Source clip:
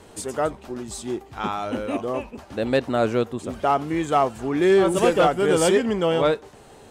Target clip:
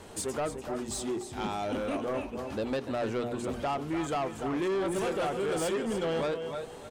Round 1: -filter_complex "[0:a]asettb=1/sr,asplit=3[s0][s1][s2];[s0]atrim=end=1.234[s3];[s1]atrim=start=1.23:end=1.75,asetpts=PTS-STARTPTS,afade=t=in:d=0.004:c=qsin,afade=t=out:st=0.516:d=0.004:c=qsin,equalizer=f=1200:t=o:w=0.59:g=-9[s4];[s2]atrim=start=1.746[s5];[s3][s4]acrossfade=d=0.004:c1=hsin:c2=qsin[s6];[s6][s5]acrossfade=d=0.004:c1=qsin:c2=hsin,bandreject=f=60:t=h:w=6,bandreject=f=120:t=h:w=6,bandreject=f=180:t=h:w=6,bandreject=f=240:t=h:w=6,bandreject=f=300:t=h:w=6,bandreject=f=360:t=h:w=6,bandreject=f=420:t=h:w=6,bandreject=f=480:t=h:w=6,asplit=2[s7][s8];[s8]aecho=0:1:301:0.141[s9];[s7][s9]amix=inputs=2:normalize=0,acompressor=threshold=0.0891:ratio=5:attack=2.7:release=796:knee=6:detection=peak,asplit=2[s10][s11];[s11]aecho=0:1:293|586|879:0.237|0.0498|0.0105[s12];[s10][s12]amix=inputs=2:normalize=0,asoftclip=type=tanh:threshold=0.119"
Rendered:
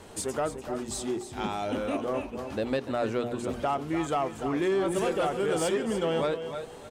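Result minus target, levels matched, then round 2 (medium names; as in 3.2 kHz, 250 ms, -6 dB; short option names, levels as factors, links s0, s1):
saturation: distortion -10 dB
-filter_complex "[0:a]asettb=1/sr,asplit=3[s0][s1][s2];[s0]atrim=end=1.234[s3];[s1]atrim=start=1.23:end=1.75,asetpts=PTS-STARTPTS,afade=t=in:d=0.004:c=qsin,afade=t=out:st=0.516:d=0.004:c=qsin,equalizer=f=1200:t=o:w=0.59:g=-9[s4];[s2]atrim=start=1.746[s5];[s3][s4]acrossfade=d=0.004:c1=hsin:c2=qsin[s6];[s6][s5]acrossfade=d=0.004:c1=qsin:c2=hsin,bandreject=f=60:t=h:w=6,bandreject=f=120:t=h:w=6,bandreject=f=180:t=h:w=6,bandreject=f=240:t=h:w=6,bandreject=f=300:t=h:w=6,bandreject=f=360:t=h:w=6,bandreject=f=420:t=h:w=6,bandreject=f=480:t=h:w=6,asplit=2[s7][s8];[s8]aecho=0:1:301:0.141[s9];[s7][s9]amix=inputs=2:normalize=0,acompressor=threshold=0.0891:ratio=5:attack=2.7:release=796:knee=6:detection=peak,asplit=2[s10][s11];[s11]aecho=0:1:293|586|879:0.237|0.0498|0.0105[s12];[s10][s12]amix=inputs=2:normalize=0,asoftclip=type=tanh:threshold=0.0501"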